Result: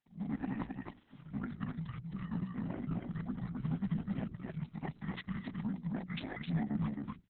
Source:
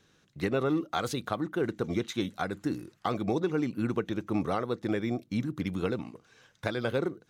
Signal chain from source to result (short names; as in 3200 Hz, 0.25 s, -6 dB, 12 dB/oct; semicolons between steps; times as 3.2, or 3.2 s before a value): whole clip reversed; gate with hold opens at -53 dBFS; low shelf 61 Hz -12 dB; fixed phaser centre 380 Hz, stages 4; pitch shift -11 st; notches 60/120/180/240/300/360/420 Hz; echo 0.265 s -3 dB; gain -4 dB; Opus 6 kbps 48000 Hz